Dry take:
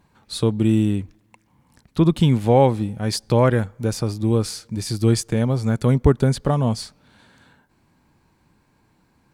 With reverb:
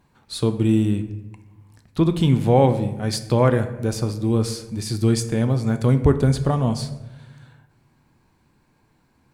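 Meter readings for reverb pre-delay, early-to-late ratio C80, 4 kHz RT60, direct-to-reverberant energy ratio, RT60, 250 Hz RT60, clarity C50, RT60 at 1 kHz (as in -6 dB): 3 ms, 14.0 dB, 0.65 s, 8.0 dB, 1.1 s, 1.4 s, 11.5 dB, 0.95 s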